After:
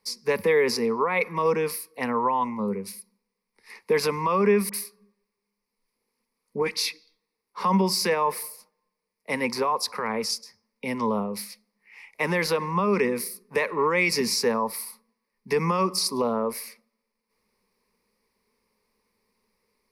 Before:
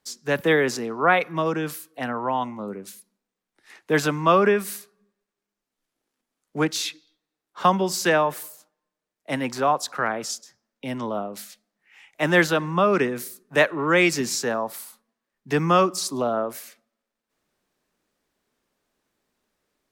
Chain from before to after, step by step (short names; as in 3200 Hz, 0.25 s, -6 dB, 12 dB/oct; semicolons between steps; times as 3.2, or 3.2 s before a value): 4.69–6.86 dispersion highs, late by 47 ms, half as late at 1500 Hz; limiter -17 dBFS, peak gain reduction 11 dB; ripple EQ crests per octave 0.88, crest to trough 14 dB